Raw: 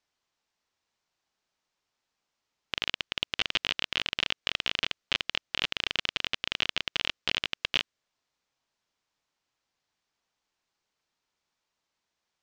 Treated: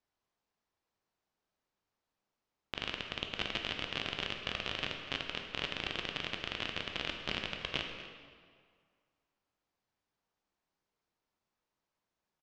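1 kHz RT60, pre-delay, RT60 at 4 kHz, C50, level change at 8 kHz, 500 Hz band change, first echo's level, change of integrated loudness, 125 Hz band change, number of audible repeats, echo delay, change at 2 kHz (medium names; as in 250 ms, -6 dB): 2.0 s, 10 ms, 1.4 s, 4.5 dB, -9.5 dB, 0.0 dB, -16.0 dB, -7.5 dB, +1.5 dB, 1, 245 ms, -6.5 dB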